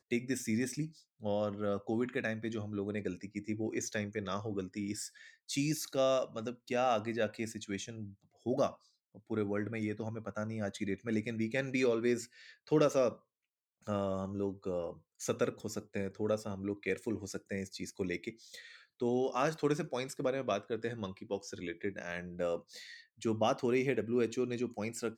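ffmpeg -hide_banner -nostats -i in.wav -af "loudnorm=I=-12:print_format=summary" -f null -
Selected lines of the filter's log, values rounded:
Input Integrated:    -35.8 LUFS
Input True Peak:     -15.8 dBTP
Input LRA:             3.9 LU
Input Threshold:     -46.1 LUFS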